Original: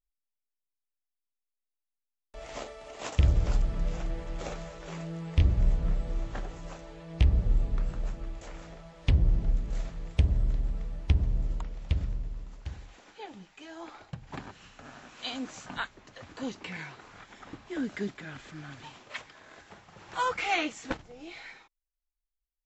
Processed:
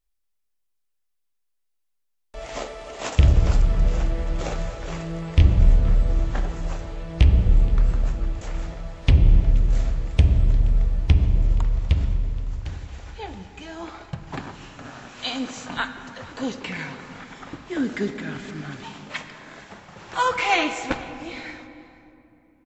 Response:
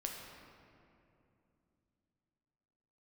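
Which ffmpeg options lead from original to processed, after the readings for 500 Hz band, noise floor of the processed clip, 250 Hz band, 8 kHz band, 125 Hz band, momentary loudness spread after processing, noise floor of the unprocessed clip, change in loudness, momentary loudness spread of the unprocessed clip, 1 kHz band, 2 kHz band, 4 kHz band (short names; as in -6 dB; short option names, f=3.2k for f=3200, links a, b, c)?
+8.0 dB, -72 dBFS, +8.0 dB, n/a, +9.0 dB, 20 LU, under -85 dBFS, +8.5 dB, 21 LU, +8.0 dB, +8.0 dB, +8.0 dB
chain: -filter_complex "[0:a]aecho=1:1:474:0.0794,asplit=2[a][b];[1:a]atrim=start_sample=2205,asetrate=39690,aresample=44100[c];[b][c]afir=irnorm=-1:irlink=0,volume=-2dB[d];[a][d]amix=inputs=2:normalize=0,volume=3.5dB"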